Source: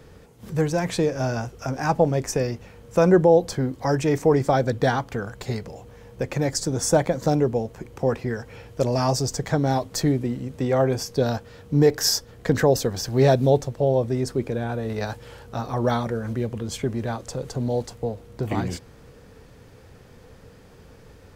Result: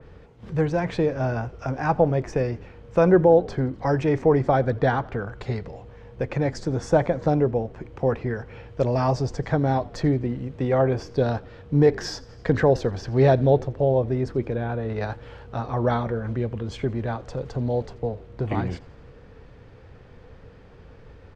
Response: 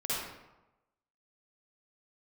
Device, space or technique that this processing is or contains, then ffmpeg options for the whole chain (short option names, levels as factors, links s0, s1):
low shelf boost with a cut just above: -filter_complex "[0:a]lowpass=3200,lowshelf=f=69:g=5.5,equalizer=f=210:t=o:w=0.77:g=-2.5,asplit=5[s0][s1][s2][s3][s4];[s1]adelay=85,afreqshift=-46,volume=0.0708[s5];[s2]adelay=170,afreqshift=-92,volume=0.0427[s6];[s3]adelay=255,afreqshift=-138,volume=0.0254[s7];[s4]adelay=340,afreqshift=-184,volume=0.0153[s8];[s0][s5][s6][s7][s8]amix=inputs=5:normalize=0,adynamicequalizer=threshold=0.00794:dfrequency=2800:dqfactor=0.7:tfrequency=2800:tqfactor=0.7:attack=5:release=100:ratio=0.375:range=2.5:mode=cutabove:tftype=highshelf"